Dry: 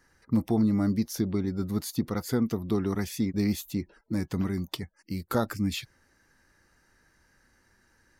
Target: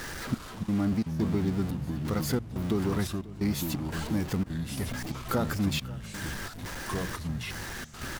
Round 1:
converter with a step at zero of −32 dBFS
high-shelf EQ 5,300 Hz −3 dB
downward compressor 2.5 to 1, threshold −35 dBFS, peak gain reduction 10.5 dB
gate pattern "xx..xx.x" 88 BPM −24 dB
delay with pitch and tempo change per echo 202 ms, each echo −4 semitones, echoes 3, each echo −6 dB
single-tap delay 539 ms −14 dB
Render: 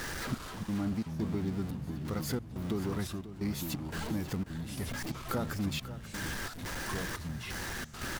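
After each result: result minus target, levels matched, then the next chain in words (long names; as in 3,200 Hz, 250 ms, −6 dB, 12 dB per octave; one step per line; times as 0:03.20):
downward compressor: peak gain reduction +6 dB; echo-to-direct +6 dB
converter with a step at zero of −32 dBFS
high-shelf EQ 5,300 Hz −3 dB
downward compressor 2.5 to 1, threshold −25 dBFS, peak gain reduction 4.5 dB
gate pattern "xx..xx.x" 88 BPM −24 dB
delay with pitch and tempo change per echo 202 ms, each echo −4 semitones, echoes 3, each echo −6 dB
single-tap delay 539 ms −14 dB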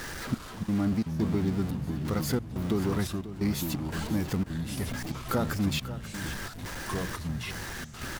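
echo-to-direct +6 dB
converter with a step at zero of −32 dBFS
high-shelf EQ 5,300 Hz −3 dB
downward compressor 2.5 to 1, threshold −25 dBFS, peak gain reduction 4.5 dB
gate pattern "xx..xx.x" 88 BPM −24 dB
delay with pitch and tempo change per echo 202 ms, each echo −4 semitones, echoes 3, each echo −6 dB
single-tap delay 539 ms −20 dB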